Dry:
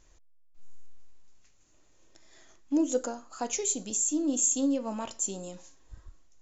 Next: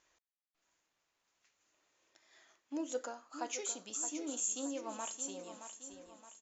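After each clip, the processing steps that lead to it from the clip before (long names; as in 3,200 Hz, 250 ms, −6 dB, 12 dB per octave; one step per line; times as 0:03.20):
resonant band-pass 1,900 Hz, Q 0.54
on a send: repeating echo 620 ms, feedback 45%, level −9.5 dB
on the sum: level −3 dB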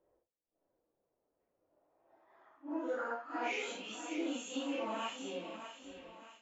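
random phases in long frames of 200 ms
low-pass filter sweep 520 Hz → 2,600 Hz, 0:01.55–0:03.63
level +3.5 dB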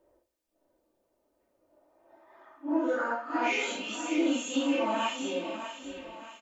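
comb filter 3.3 ms, depth 44%
convolution reverb RT60 0.45 s, pre-delay 117 ms, DRR 19 dB
level +8 dB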